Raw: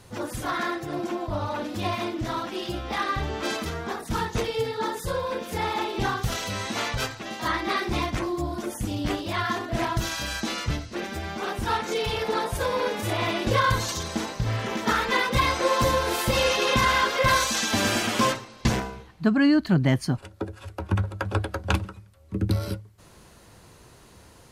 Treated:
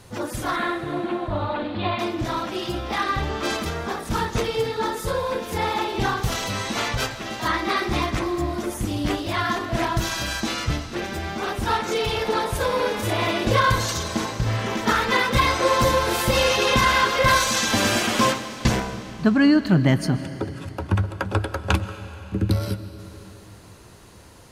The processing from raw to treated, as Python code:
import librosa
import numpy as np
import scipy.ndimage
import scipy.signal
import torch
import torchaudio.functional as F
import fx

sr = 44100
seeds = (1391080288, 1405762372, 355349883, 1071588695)

y = fx.steep_lowpass(x, sr, hz=4300.0, slope=72, at=(0.56, 1.99))
y = fx.rev_freeverb(y, sr, rt60_s=3.7, hf_ratio=0.95, predelay_ms=90, drr_db=12.0)
y = y * librosa.db_to_amplitude(3.0)